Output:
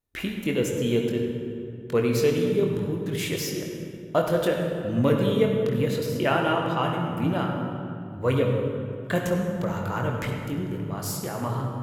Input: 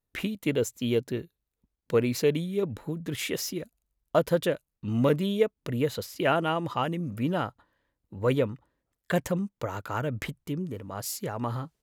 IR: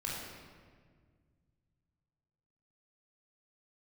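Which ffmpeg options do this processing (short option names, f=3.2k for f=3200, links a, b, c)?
-filter_complex "[0:a]asplit=2[a][b];[1:a]atrim=start_sample=2205,asetrate=28665,aresample=44100,adelay=22[c];[b][c]afir=irnorm=-1:irlink=0,volume=-6dB[d];[a][d]amix=inputs=2:normalize=0"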